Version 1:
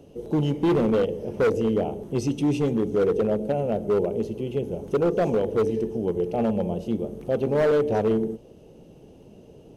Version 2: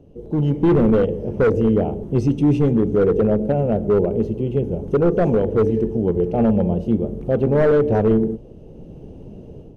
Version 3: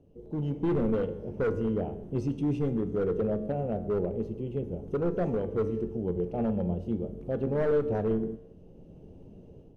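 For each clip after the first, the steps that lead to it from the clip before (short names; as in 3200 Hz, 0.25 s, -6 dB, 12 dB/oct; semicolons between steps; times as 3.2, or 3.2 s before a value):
tilt -3 dB/oct; AGC gain up to 9.5 dB; dynamic EQ 1600 Hz, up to +5 dB, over -32 dBFS, Q 1.3; gain -5.5 dB
resonator 90 Hz, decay 0.86 s, harmonics all, mix 60%; gain -5 dB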